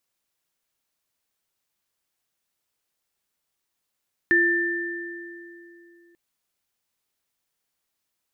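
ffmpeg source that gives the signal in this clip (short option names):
-f lavfi -i "aevalsrc='0.0891*pow(10,-3*t/3.25)*sin(2*PI*343*t)+0.178*pow(10,-3*t/2.31)*sin(2*PI*1780*t)':d=1.84:s=44100"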